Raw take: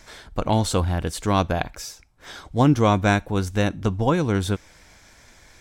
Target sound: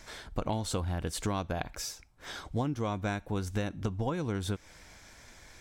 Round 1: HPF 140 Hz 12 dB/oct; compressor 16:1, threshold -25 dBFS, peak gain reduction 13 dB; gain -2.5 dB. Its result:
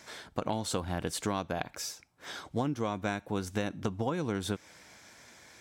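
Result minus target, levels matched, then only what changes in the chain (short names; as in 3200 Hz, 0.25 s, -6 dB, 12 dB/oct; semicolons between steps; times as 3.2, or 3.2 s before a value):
125 Hz band -4.0 dB
remove: HPF 140 Hz 12 dB/oct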